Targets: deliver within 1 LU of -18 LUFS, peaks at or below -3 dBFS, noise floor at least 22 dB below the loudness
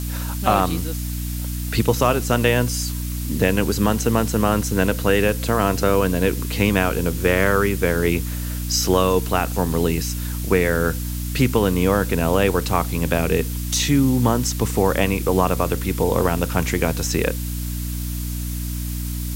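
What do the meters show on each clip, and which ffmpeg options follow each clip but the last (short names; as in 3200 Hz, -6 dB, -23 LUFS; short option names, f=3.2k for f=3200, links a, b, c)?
hum 60 Hz; harmonics up to 300 Hz; hum level -24 dBFS; noise floor -26 dBFS; noise floor target -43 dBFS; loudness -20.5 LUFS; peak -3.0 dBFS; loudness target -18.0 LUFS
-> -af "bandreject=f=60:t=h:w=6,bandreject=f=120:t=h:w=6,bandreject=f=180:t=h:w=6,bandreject=f=240:t=h:w=6,bandreject=f=300:t=h:w=6"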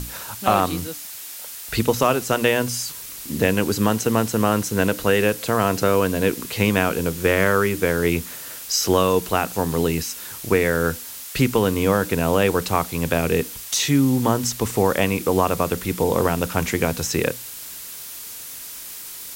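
hum none; noise floor -36 dBFS; noise floor target -43 dBFS
-> -af "afftdn=nr=7:nf=-36"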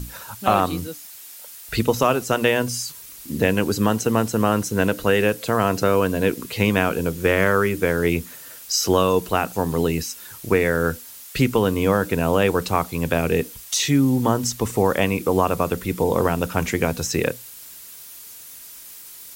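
noise floor -41 dBFS; noise floor target -43 dBFS
-> -af "afftdn=nr=6:nf=-41"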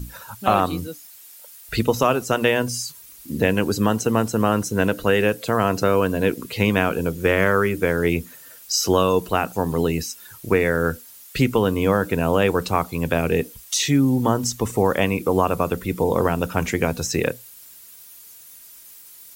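noise floor -45 dBFS; loudness -21.0 LUFS; peak -3.5 dBFS; loudness target -18.0 LUFS
-> -af "volume=3dB,alimiter=limit=-3dB:level=0:latency=1"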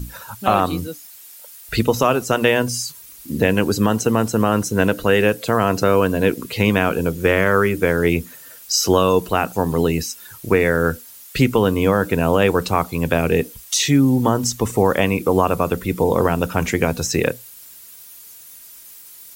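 loudness -18.5 LUFS; peak -3.0 dBFS; noise floor -42 dBFS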